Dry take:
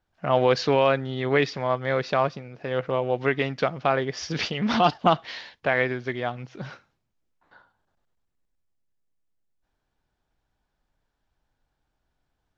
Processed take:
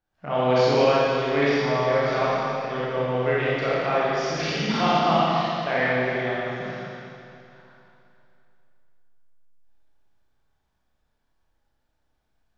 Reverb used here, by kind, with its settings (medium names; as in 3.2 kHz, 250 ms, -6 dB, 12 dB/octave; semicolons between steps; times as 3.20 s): Schroeder reverb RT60 2.7 s, combs from 28 ms, DRR -9.5 dB; trim -8 dB